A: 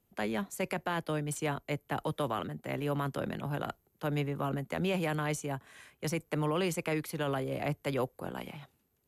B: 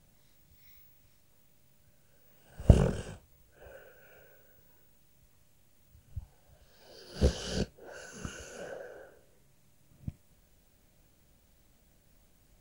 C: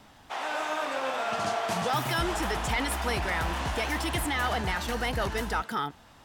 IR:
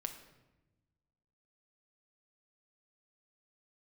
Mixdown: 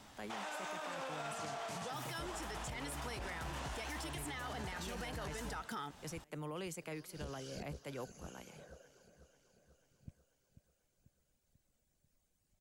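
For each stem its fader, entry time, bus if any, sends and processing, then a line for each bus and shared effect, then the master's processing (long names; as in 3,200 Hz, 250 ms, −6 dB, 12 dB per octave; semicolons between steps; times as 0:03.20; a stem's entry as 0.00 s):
−13.0 dB, 0.00 s, no bus, no send, echo send −23 dB, no processing
−13.5 dB, 0.00 s, bus A, no send, echo send −11.5 dB, reverb reduction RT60 1.5 s
−4.0 dB, 0.00 s, bus A, no send, no echo send, no processing
bus A: 0.0 dB, downward compressor, threshold −36 dBFS, peak gain reduction 13 dB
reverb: not used
echo: repeating echo 491 ms, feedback 56%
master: parametric band 7,400 Hz +6 dB 1.2 octaves; brickwall limiter −34.5 dBFS, peak gain reduction 10.5 dB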